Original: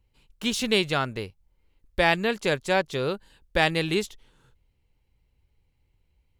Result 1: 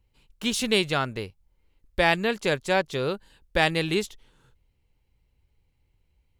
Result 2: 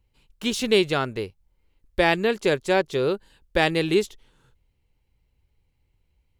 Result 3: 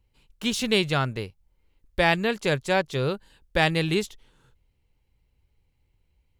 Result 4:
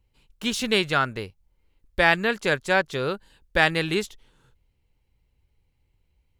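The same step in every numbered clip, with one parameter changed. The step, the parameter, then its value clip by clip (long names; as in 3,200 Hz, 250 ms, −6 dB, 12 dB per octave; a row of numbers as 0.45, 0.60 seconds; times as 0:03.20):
dynamic equaliser, frequency: 9,500, 380, 130, 1,500 Hertz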